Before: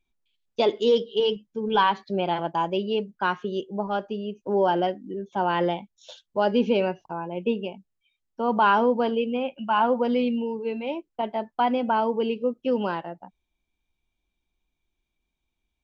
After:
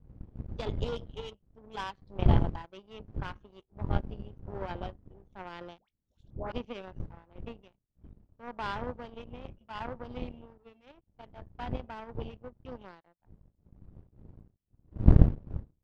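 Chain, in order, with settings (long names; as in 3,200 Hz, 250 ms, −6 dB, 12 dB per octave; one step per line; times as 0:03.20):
wind on the microphone 100 Hz −22 dBFS
power curve on the samples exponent 2
0:05.78–0:06.52: all-pass dispersion highs, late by 102 ms, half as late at 1,000 Hz
level −2.5 dB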